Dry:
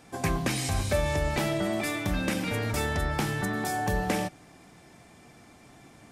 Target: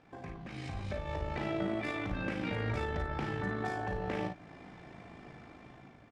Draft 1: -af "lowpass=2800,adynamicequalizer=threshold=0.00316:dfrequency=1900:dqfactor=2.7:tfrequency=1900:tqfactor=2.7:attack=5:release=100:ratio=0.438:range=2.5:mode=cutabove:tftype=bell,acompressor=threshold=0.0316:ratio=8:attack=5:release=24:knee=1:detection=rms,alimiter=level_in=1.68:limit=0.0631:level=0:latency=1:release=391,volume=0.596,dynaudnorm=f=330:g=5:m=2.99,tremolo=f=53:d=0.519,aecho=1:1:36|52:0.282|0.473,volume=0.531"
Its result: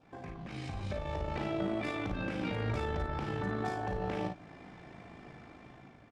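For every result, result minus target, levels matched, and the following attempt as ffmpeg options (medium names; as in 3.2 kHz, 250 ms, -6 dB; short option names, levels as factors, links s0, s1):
compression: peak gain reduction +10 dB; 2 kHz band -2.5 dB
-af "lowpass=2800,adynamicequalizer=threshold=0.00316:dfrequency=1900:dqfactor=2.7:tfrequency=1900:tqfactor=2.7:attack=5:release=100:ratio=0.438:range=2.5:mode=cutabove:tftype=bell,alimiter=level_in=1.68:limit=0.0631:level=0:latency=1:release=391,volume=0.596,dynaudnorm=f=330:g=5:m=2.99,tremolo=f=53:d=0.519,aecho=1:1:36|52:0.282|0.473,volume=0.531"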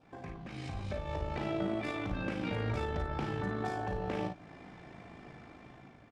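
2 kHz band -2.5 dB
-af "lowpass=2800,alimiter=level_in=1.68:limit=0.0631:level=0:latency=1:release=391,volume=0.596,dynaudnorm=f=330:g=5:m=2.99,tremolo=f=53:d=0.519,aecho=1:1:36|52:0.282|0.473,volume=0.531"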